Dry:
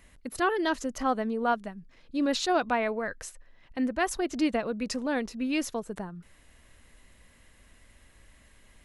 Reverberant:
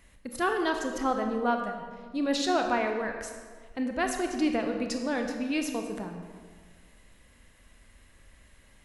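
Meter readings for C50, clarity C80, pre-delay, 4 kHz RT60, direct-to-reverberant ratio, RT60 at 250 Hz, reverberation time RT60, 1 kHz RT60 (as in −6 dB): 5.5 dB, 6.5 dB, 25 ms, 1.1 s, 4.0 dB, 1.9 s, 1.7 s, 1.6 s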